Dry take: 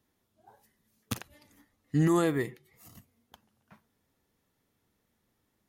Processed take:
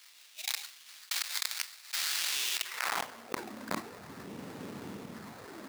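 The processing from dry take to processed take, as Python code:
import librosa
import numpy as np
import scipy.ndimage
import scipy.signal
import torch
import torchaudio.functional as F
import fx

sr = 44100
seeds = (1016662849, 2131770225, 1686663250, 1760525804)

p1 = fx.envelope_flatten(x, sr, power=0.3, at=(1.14, 2.34), fade=0.02)
p2 = fx.hum_notches(p1, sr, base_hz=60, count=6)
p3 = fx.phaser_stages(p2, sr, stages=12, low_hz=130.0, high_hz=4300.0, hz=0.48, feedback_pct=40)
p4 = fx.fuzz(p3, sr, gain_db=50.0, gate_db=-54.0)
p5 = p3 + (p4 * 10.0 ** (-6.0 / 20.0))
p6 = fx.sample_hold(p5, sr, seeds[0], rate_hz=3100.0, jitter_pct=20)
p7 = fx.filter_sweep_highpass(p6, sr, from_hz=3300.0, to_hz=180.0, start_s=2.54, end_s=3.53, q=1.1)
p8 = fx.env_flatten(p7, sr, amount_pct=100)
y = p8 * 10.0 ** (-7.0 / 20.0)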